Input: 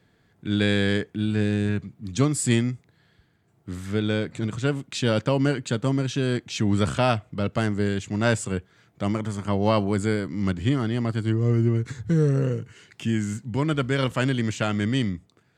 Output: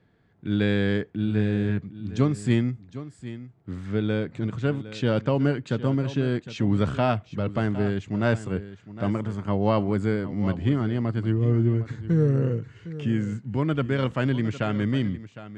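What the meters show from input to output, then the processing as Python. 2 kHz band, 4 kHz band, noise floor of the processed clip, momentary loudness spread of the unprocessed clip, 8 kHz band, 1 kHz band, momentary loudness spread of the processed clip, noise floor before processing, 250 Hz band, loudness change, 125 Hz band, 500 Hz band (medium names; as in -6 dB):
-3.5 dB, -7.0 dB, -57 dBFS, 8 LU, under -15 dB, -2.0 dB, 9 LU, -64 dBFS, -0.5 dB, -1.0 dB, 0.0 dB, -1.0 dB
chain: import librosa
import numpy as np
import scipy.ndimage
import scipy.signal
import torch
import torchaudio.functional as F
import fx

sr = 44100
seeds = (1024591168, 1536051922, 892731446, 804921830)

p1 = fx.spacing_loss(x, sr, db_at_10k=21)
y = p1 + fx.echo_single(p1, sr, ms=759, db=-14.5, dry=0)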